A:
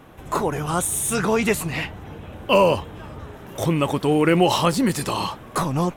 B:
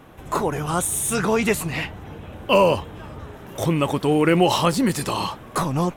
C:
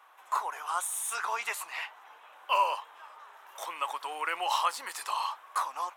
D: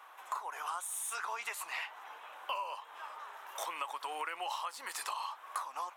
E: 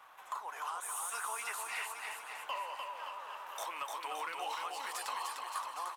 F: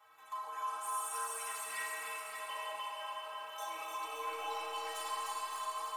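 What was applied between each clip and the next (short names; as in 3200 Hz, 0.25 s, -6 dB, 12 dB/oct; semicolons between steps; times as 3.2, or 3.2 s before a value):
nothing audible
ladder high-pass 830 Hz, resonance 45%; gain -1 dB
compressor 10:1, threshold -39 dBFS, peak gain reduction 18 dB; gain +3.5 dB
sample leveller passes 1; bouncing-ball echo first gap 0.3 s, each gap 0.9×, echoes 5; gain -5.5 dB
metallic resonator 95 Hz, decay 0.49 s, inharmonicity 0.03; Schroeder reverb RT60 3.8 s, combs from 27 ms, DRR -2.5 dB; gain +6.5 dB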